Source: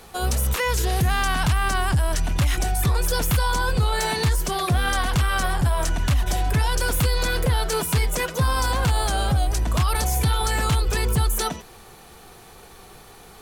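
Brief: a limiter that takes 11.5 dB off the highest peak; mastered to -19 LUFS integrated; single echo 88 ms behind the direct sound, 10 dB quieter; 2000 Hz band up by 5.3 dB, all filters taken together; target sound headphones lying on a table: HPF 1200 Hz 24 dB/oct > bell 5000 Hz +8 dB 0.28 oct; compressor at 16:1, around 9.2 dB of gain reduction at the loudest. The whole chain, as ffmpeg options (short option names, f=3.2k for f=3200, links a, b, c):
-af "equalizer=f=2k:t=o:g=7.5,acompressor=threshold=-25dB:ratio=16,alimiter=level_in=2dB:limit=-24dB:level=0:latency=1,volume=-2dB,highpass=f=1.2k:w=0.5412,highpass=f=1.2k:w=1.3066,equalizer=f=5k:t=o:w=0.28:g=8,aecho=1:1:88:0.316,volume=18dB"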